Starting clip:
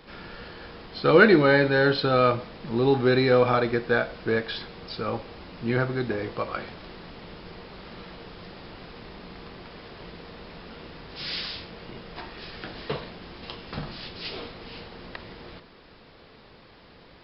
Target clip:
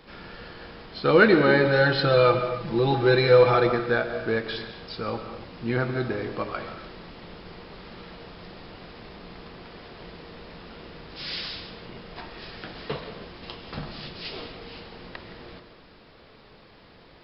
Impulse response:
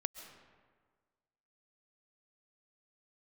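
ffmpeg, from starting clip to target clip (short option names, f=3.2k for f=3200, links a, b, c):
-filter_complex "[0:a]asettb=1/sr,asplit=3[a][b][c];[a]atrim=end=1.644[d];[b]atrim=start=1.64:end=3.7,asetpts=PTS-STARTPTS,afade=t=in:d=0.004:c=qsin,afade=t=out:st=2.056:d=0.004:c=qsin,aecho=1:1:5.9:0.91,atrim=end_sample=90846[e];[c]atrim=start=3.696[f];[d][e]acrossfade=d=0.004:c1=hsin:c2=qsin[g];[g][f]acrossfade=d=0.004:c1=qsin:c2=hsin[h];[1:a]atrim=start_sample=2205,afade=t=out:st=0.37:d=0.01,atrim=end_sample=16758[i];[h][i]afir=irnorm=-1:irlink=0"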